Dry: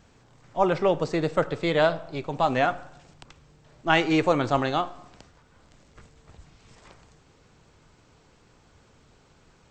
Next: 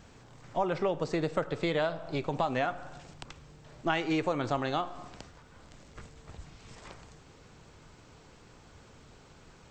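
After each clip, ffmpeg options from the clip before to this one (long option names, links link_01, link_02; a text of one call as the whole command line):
ffmpeg -i in.wav -af "acompressor=threshold=-31dB:ratio=4,volume=3dB" out.wav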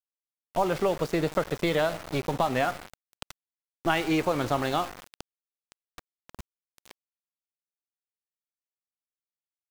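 ffmpeg -i in.wav -af "aeval=exprs='val(0)+0.00126*(sin(2*PI*50*n/s)+sin(2*PI*2*50*n/s)/2+sin(2*PI*3*50*n/s)/3+sin(2*PI*4*50*n/s)/4+sin(2*PI*5*50*n/s)/5)':channel_layout=same,aeval=exprs='val(0)*gte(abs(val(0)),0.0133)':channel_layout=same,volume=4dB" out.wav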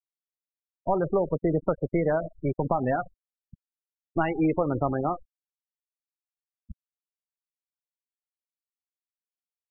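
ffmpeg -i in.wav -filter_complex "[0:a]tiltshelf=frequency=710:gain=3.5,acrossover=split=3500[link_01][link_02];[link_01]adelay=310[link_03];[link_03][link_02]amix=inputs=2:normalize=0,afftfilt=real='re*gte(hypot(re,im),0.0631)':imag='im*gte(hypot(re,im),0.0631)':win_size=1024:overlap=0.75" out.wav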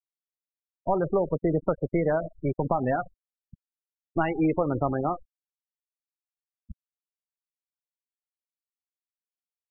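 ffmpeg -i in.wav -af anull out.wav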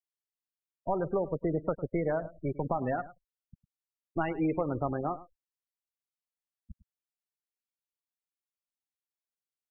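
ffmpeg -i in.wav -af "aecho=1:1:104:0.141,volume=-5.5dB" out.wav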